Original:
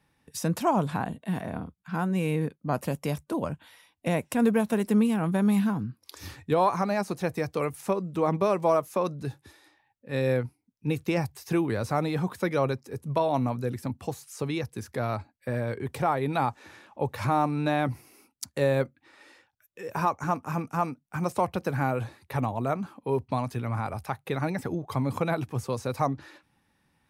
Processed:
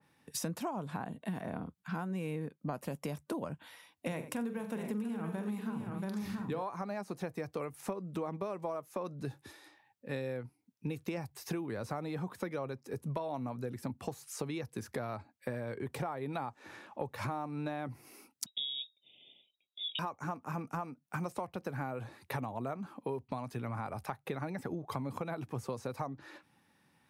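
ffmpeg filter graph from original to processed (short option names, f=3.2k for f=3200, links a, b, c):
-filter_complex "[0:a]asettb=1/sr,asplit=3[a][b][c];[a]atrim=end=4.074[d];[b]atrim=start=4.07:end=6.63,asetpts=PTS-STARTPTS,afade=t=in:d=0.004:c=qsin,afade=t=out:st=2.556:d=0.004:c=qsin,equalizer=f=670:w=5:g=-5.5,bandreject=f=50:t=h:w=6,bandreject=f=100:t=h:w=6,bandreject=f=150:t=h:w=6,bandreject=f=200:t=h:w=6,bandreject=f=250:t=h:w=6,bandreject=f=300:t=h:w=6,bandreject=f=350:t=h:w=6,bandreject=f=400:t=h:w=6,bandreject=f=450:t=h:w=6,bandreject=f=500:t=h:w=6,aecho=1:1:43|90|456|680|732:0.282|0.168|0.126|0.355|0.211,atrim=end_sample=112896[e];[c]atrim=start=6.626[f];[d][e]acrossfade=d=0.004:c1=hsin:c2=qsin[g];[g][f]acrossfade=d=0.004:c1=qsin:c2=hsin,asettb=1/sr,asplit=3[h][i][j];[h]atrim=end=18.464[k];[i]atrim=start=18.46:end=19.99,asetpts=PTS-STARTPTS,afade=t=in:d=0.004:c=qsin,afade=t=out:st=1.526:d=0.004:c=qsin,lowpass=f=3.3k:t=q:w=0.5098,lowpass=f=3.3k:t=q:w=0.6013,lowpass=f=3.3k:t=q:w=0.9,lowpass=f=3.3k:t=q:w=2.563,afreqshift=-3900,asuperstop=centerf=1400:order=8:qfactor=0.63,equalizer=f=430:t=o:w=0.2:g=-5[l];[j]atrim=start=19.986[m];[k][l]acrossfade=d=0.004:c1=hsin:c2=qsin[n];[n][m]acrossfade=d=0.004:c1=qsin:c2=hsin,highpass=120,acompressor=threshold=-35dB:ratio=12,adynamicequalizer=threshold=0.00158:dfrequency=2200:dqfactor=0.7:tfrequency=2200:tqfactor=0.7:attack=5:release=100:ratio=0.375:range=2:mode=cutabove:tftype=highshelf,volume=1dB"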